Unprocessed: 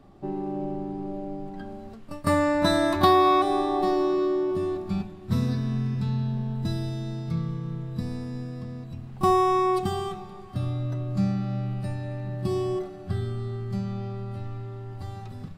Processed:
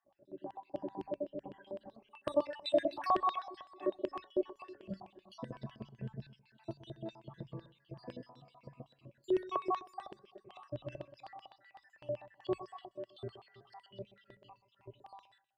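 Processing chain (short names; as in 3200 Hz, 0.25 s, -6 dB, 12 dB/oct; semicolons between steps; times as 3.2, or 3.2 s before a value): random spectral dropouts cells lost 72%; echo with dull and thin repeats by turns 0.116 s, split 1100 Hz, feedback 55%, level -9 dB; AGC gain up to 12.5 dB; tilt shelf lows +4 dB; notches 50/100/150/200 Hz; resonator 140 Hz, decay 0.58 s, harmonics all, mix 80%; reverb removal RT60 0.87 s; in parallel at -3 dB: limiter -22 dBFS, peak gain reduction 10.5 dB; on the sum: LFO band-pass square 7.9 Hz 640–3100 Hz; ripple EQ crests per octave 1.3, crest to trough 6 dB; gain -1.5 dB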